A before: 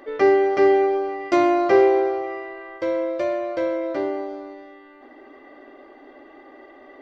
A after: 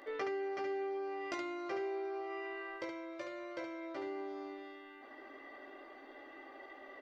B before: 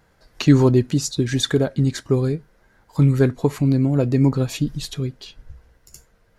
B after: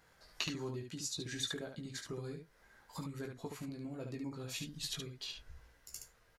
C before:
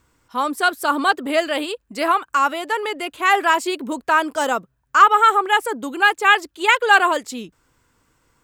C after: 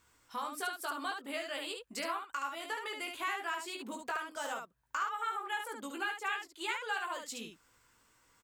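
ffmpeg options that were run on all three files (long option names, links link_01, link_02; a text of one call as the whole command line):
ffmpeg -i in.wav -af "acompressor=threshold=-31dB:ratio=5,tiltshelf=frequency=700:gain=-5,aecho=1:1:18|72:0.596|0.562,volume=-9dB" out.wav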